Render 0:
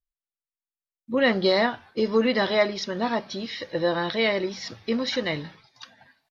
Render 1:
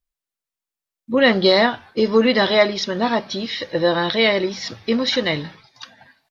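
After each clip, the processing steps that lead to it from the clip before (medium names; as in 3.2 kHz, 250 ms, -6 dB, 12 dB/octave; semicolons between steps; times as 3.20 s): dynamic bell 3.5 kHz, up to +4 dB, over -42 dBFS, Q 2.9; trim +6 dB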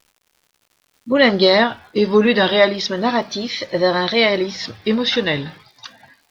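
vibrato 0.34 Hz 91 cents; crackle 200 per s -45 dBFS; trim +1.5 dB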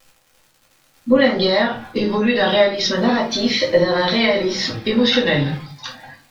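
compression 10:1, threshold -19 dBFS, peak gain reduction 12 dB; simulated room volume 150 m³, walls furnished, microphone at 2.2 m; trim +2 dB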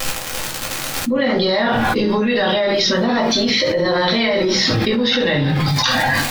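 level flattener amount 100%; trim -7.5 dB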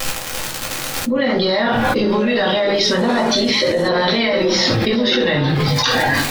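repeats whose band climbs or falls 707 ms, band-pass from 410 Hz, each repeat 1.4 oct, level -5 dB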